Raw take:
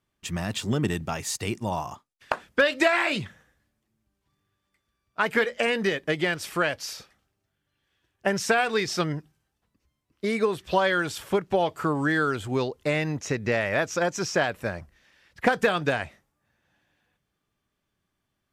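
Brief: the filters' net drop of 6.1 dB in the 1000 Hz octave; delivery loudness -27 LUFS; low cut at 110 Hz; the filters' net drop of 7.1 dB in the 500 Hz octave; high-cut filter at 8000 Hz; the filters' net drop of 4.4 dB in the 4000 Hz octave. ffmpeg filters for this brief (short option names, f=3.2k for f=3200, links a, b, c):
-af "highpass=110,lowpass=8k,equalizer=f=500:t=o:g=-7.5,equalizer=f=1k:t=o:g=-5.5,equalizer=f=4k:t=o:g=-5.5,volume=3.5dB"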